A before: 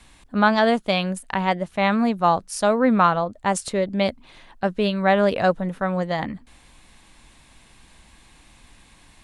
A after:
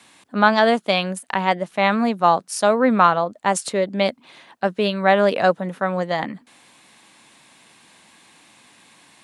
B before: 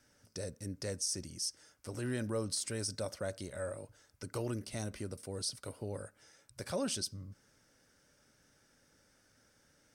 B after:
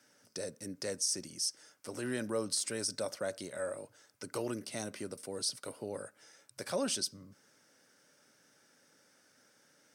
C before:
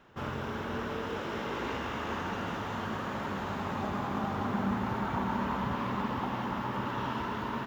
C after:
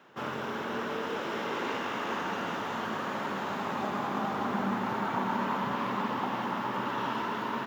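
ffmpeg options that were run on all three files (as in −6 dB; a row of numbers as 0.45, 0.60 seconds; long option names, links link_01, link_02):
-filter_complex "[0:a]acrossover=split=110|4700[link_01][link_02][link_03];[link_01]acrusher=bits=3:mix=0:aa=0.000001[link_04];[link_04][link_02][link_03]amix=inputs=3:normalize=0,lowshelf=frequency=140:gain=-10,volume=3dB"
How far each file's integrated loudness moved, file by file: +2.0, +2.0, +1.5 LU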